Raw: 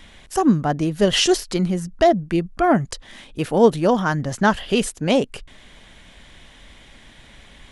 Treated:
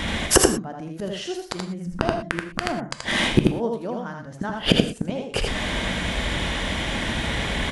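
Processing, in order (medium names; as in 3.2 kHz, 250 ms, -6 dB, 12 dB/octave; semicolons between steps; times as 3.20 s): high-pass 45 Hz 12 dB/octave; treble shelf 2.7 kHz -6.5 dB; inverted gate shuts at -20 dBFS, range -35 dB; on a send: delay 80 ms -4 dB; on the sum: gated-style reverb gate 140 ms flat, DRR 8 dB; loudness maximiser +22.5 dB; trim -1 dB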